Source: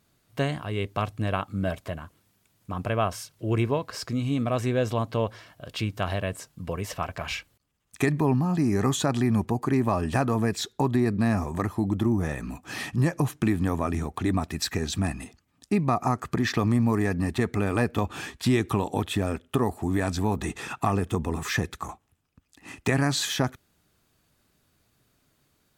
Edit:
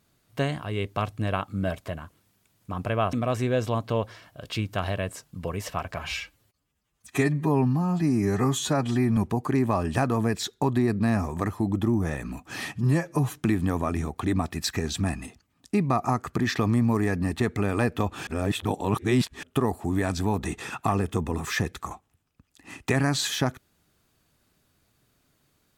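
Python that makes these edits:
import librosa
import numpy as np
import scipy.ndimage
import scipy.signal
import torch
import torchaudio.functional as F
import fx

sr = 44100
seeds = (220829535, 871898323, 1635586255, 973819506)

y = fx.edit(x, sr, fx.cut(start_s=3.13, length_s=1.24),
    fx.stretch_span(start_s=7.23, length_s=2.12, factor=1.5),
    fx.stretch_span(start_s=12.91, length_s=0.4, factor=1.5),
    fx.reverse_span(start_s=18.25, length_s=1.16), tone=tone)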